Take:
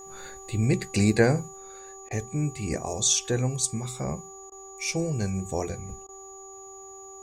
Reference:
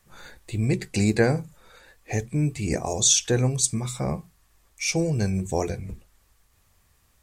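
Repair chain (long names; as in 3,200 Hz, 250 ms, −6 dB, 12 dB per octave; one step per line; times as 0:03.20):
hum removal 387.4 Hz, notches 3
notch filter 6,800 Hz, Q 30
repair the gap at 0:02.09/0:04.50/0:06.07, 17 ms
level 0 dB, from 0:01.48 +4 dB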